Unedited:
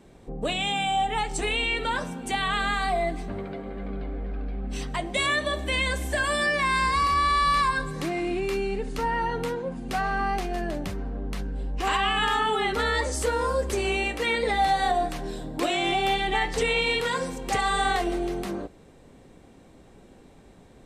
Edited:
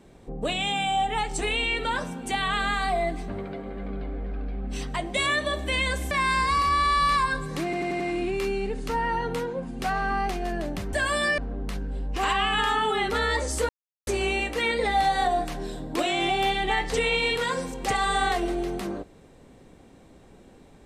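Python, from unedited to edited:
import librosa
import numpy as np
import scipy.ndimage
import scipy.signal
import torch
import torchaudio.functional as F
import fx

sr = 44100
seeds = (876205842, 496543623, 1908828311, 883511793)

y = fx.edit(x, sr, fx.move(start_s=6.11, length_s=0.45, to_s=11.02),
    fx.stutter(start_s=8.09, slice_s=0.09, count=5),
    fx.silence(start_s=13.33, length_s=0.38), tone=tone)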